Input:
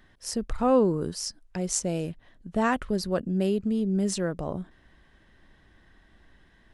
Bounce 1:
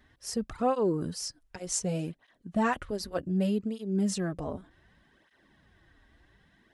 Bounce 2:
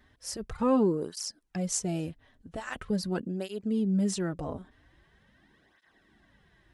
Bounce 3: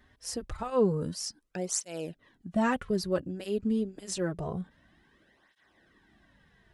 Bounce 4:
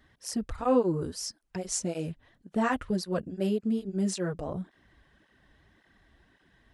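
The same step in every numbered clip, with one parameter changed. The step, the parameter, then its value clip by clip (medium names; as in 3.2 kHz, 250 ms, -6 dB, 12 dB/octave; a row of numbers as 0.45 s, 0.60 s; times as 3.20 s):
cancelling through-zero flanger, nulls at: 0.66 Hz, 0.43 Hz, 0.27 Hz, 1.8 Hz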